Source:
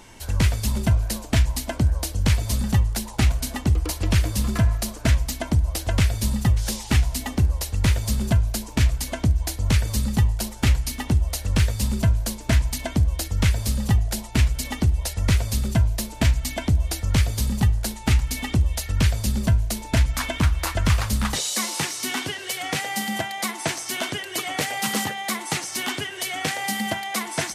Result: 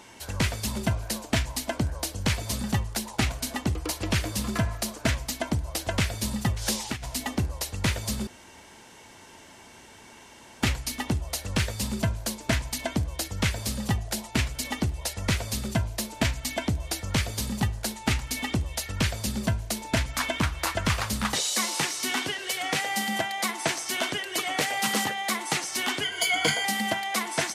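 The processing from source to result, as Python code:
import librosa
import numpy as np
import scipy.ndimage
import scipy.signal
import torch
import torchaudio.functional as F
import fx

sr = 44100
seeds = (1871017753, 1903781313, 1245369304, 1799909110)

y = fx.over_compress(x, sr, threshold_db=-23.0, ratio=-1.0, at=(6.6, 7.05), fade=0.02)
y = fx.ripple_eq(y, sr, per_octave=1.8, db=17, at=(26.03, 26.65))
y = fx.edit(y, sr, fx.room_tone_fill(start_s=8.27, length_s=2.34), tone=tone)
y = fx.highpass(y, sr, hz=230.0, slope=6)
y = fx.high_shelf(y, sr, hz=9000.0, db=-4.5)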